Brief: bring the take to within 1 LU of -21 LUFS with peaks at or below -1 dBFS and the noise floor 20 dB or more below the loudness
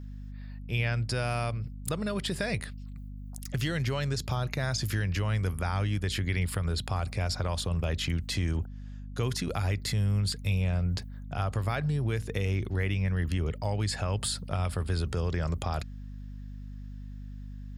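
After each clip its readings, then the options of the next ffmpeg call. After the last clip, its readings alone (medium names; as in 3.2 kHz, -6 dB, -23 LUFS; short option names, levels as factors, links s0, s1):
hum 50 Hz; highest harmonic 250 Hz; hum level -39 dBFS; loudness -31.0 LUFS; peak level -14.5 dBFS; loudness target -21.0 LUFS
-> -af "bandreject=f=50:t=h:w=6,bandreject=f=100:t=h:w=6,bandreject=f=150:t=h:w=6,bandreject=f=200:t=h:w=6,bandreject=f=250:t=h:w=6"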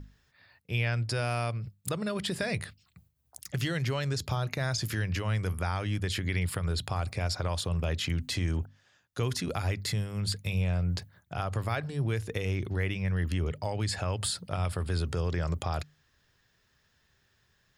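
hum not found; loudness -32.0 LUFS; peak level -14.5 dBFS; loudness target -21.0 LUFS
-> -af "volume=3.55"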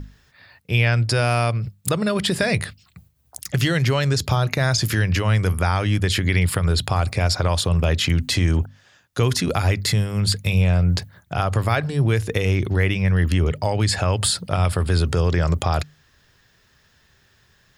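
loudness -21.0 LUFS; peak level -3.5 dBFS; noise floor -60 dBFS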